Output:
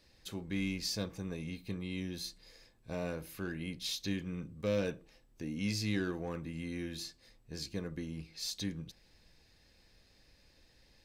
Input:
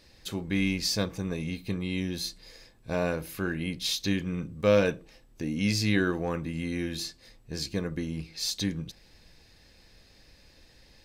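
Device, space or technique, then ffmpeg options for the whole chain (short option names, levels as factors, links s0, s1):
one-band saturation: -filter_complex "[0:a]acrossover=split=490|2800[s0][s1][s2];[s1]asoftclip=type=tanh:threshold=0.0282[s3];[s0][s3][s2]amix=inputs=3:normalize=0,volume=0.398"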